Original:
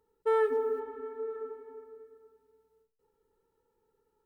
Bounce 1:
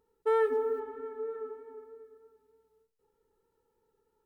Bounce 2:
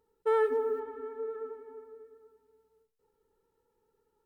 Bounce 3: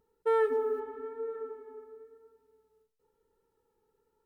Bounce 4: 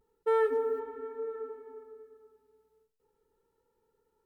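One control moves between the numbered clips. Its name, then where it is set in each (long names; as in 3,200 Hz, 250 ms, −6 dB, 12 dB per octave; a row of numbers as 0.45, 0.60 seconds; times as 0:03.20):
pitch vibrato, speed: 3.2, 9.3, 1, 0.31 Hertz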